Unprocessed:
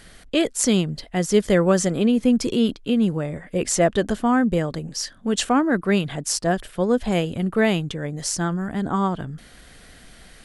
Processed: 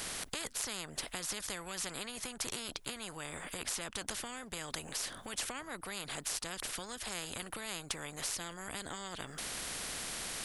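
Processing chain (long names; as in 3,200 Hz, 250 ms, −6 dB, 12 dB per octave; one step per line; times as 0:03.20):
high-shelf EQ 8,900 Hz +9 dB
downward compressor 4 to 1, threshold −30 dBFS, peak gain reduction 15 dB
every bin compressed towards the loudest bin 4 to 1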